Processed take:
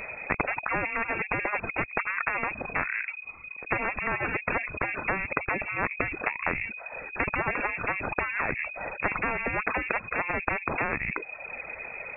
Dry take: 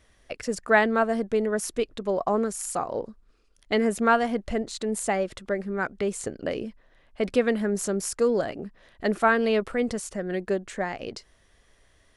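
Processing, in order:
reverb reduction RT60 0.58 s
voice inversion scrambler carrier 2,500 Hz
every bin compressed towards the loudest bin 10 to 1

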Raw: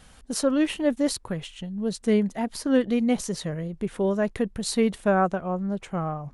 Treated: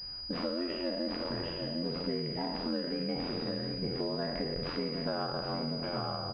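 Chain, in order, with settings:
peak hold with a decay on every bin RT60 1.19 s
single-tap delay 755 ms −11 dB
ring modulation 43 Hz
flanger 1.3 Hz, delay 1.7 ms, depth 2.7 ms, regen −62%
downward compressor, threshold −32 dBFS, peak gain reduction 11.5 dB
switching amplifier with a slow clock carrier 4,900 Hz
level +1 dB

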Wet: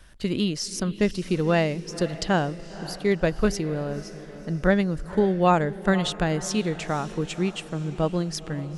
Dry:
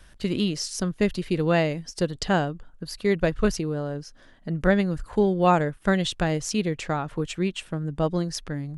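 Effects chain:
feedback delay with all-pass diffusion 514 ms, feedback 49%, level −15 dB

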